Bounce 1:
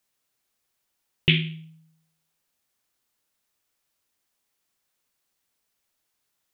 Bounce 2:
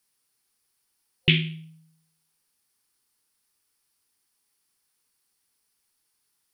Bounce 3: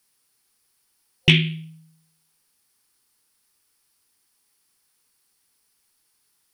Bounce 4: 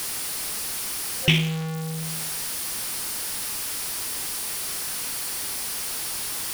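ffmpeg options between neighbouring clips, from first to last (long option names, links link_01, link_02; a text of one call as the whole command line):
ffmpeg -i in.wav -af "superequalizer=8b=0.355:14b=1.78:16b=2.51" out.wav
ffmpeg -i in.wav -af "acontrast=45" out.wav
ffmpeg -i in.wav -af "aeval=exprs='val(0)+0.5*0.119*sgn(val(0))':channel_layout=same,volume=-5.5dB" out.wav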